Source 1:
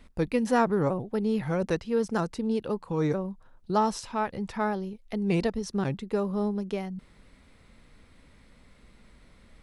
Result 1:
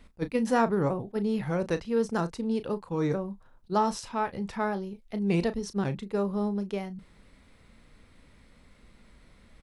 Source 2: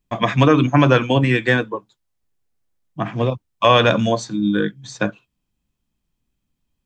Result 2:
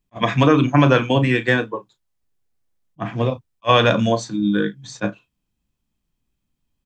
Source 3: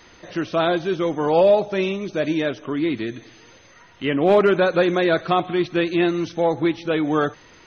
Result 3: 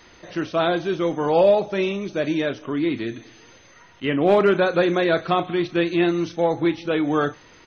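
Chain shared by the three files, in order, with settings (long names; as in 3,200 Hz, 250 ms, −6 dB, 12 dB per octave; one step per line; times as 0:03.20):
double-tracking delay 35 ms −12.5 dB
level that may rise only so fast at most 600 dB per second
level −1 dB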